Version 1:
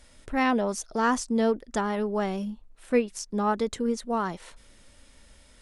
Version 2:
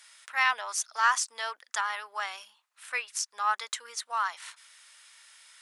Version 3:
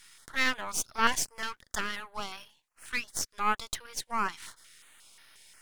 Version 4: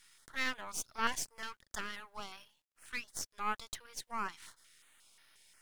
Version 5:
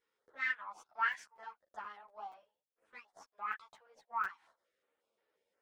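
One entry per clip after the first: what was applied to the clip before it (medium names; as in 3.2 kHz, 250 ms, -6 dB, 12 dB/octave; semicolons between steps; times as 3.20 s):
high-pass 1.1 kHz 24 dB/octave; trim +5 dB
partial rectifier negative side -12 dB; step-sequenced notch 5.6 Hz 610–7500 Hz; trim +3 dB
bit crusher 12-bit; trim -8 dB
auto-wah 470–1800 Hz, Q 5, up, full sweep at -30.5 dBFS; crackling interface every 0.24 s, samples 256, zero, from 0.88 s; three-phase chorus; trim +9.5 dB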